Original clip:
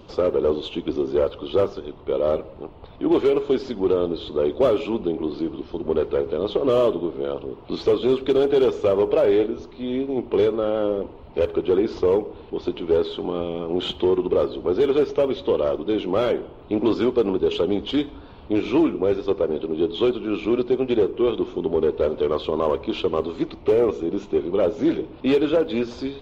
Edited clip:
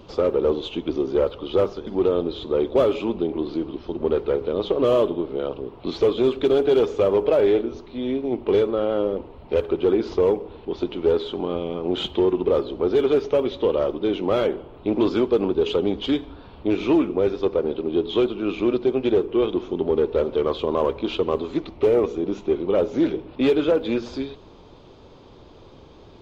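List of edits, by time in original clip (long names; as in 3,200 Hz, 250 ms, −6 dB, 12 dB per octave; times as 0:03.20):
0:01.87–0:03.72: remove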